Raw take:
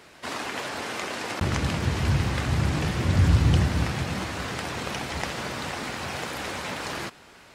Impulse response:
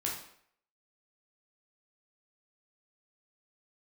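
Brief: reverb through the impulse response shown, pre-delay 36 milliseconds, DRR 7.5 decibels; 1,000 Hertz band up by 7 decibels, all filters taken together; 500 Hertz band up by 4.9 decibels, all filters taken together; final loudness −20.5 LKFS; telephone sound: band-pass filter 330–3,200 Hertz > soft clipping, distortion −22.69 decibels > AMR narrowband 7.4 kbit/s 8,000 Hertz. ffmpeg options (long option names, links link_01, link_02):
-filter_complex "[0:a]equalizer=frequency=500:width_type=o:gain=5,equalizer=frequency=1000:width_type=o:gain=7.5,asplit=2[link_01][link_02];[1:a]atrim=start_sample=2205,adelay=36[link_03];[link_02][link_03]afir=irnorm=-1:irlink=0,volume=-11dB[link_04];[link_01][link_04]amix=inputs=2:normalize=0,highpass=330,lowpass=3200,asoftclip=threshold=-16dB,volume=10.5dB" -ar 8000 -c:a libopencore_amrnb -b:a 7400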